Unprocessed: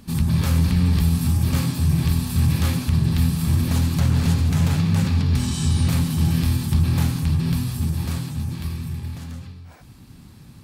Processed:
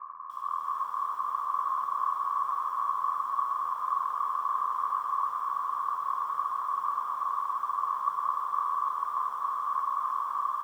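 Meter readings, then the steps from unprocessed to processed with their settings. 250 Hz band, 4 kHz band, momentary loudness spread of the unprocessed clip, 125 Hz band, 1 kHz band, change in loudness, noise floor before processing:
under -40 dB, under -25 dB, 10 LU, under -40 dB, +13.0 dB, -9.5 dB, -45 dBFS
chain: per-bin compression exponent 0.2; comb 1.8 ms, depth 94%; limiter -12 dBFS, peak gain reduction 11 dB; AGC gain up to 12 dB; added harmonics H 4 -8 dB, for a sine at -2 dBFS; Butterworth band-pass 1100 Hz, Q 6.7; air absorption 470 m; diffused feedback echo 0.538 s, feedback 54%, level -5 dB; lo-fi delay 0.295 s, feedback 35%, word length 9-bit, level -6.5 dB

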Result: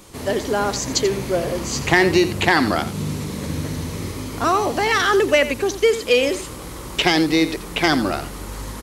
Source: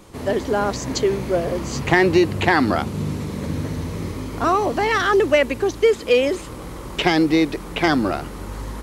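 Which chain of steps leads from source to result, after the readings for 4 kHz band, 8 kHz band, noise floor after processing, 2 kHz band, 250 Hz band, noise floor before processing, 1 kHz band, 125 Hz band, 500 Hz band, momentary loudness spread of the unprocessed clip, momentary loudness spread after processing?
+5.0 dB, +7.0 dB, -34 dBFS, +2.0 dB, -1.0 dB, -34 dBFS, 0.0 dB, -1.0 dB, -0.5 dB, 12 LU, 12 LU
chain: high shelf 2800 Hz +9 dB; on a send: echo 86 ms -13 dB; on the sum: gain -1 dB

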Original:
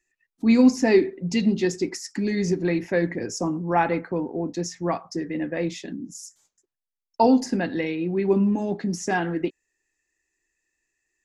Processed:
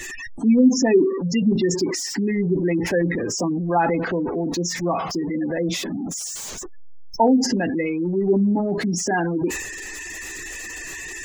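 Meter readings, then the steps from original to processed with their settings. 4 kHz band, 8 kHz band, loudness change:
+6.5 dB, +9.5 dB, +2.0 dB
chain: zero-crossing step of -26.5 dBFS; spectral gate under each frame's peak -20 dB strong; transient shaper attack +1 dB, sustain +6 dB

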